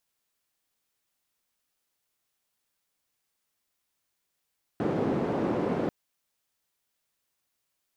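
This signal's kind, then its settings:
band-limited noise 190–380 Hz, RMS −28 dBFS 1.09 s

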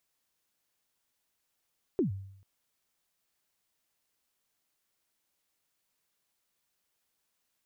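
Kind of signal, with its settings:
synth kick length 0.44 s, from 420 Hz, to 97 Hz, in 119 ms, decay 0.73 s, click off, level −22 dB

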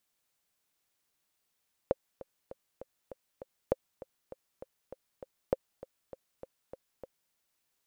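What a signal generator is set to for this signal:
click track 199 BPM, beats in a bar 6, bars 3, 529 Hz, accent 18 dB −12.5 dBFS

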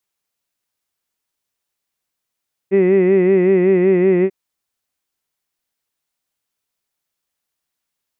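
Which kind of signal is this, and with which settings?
vowel by formant synthesis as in hid, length 1.59 s, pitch 189 Hz, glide −0.5 semitones, vibrato depth 0.8 semitones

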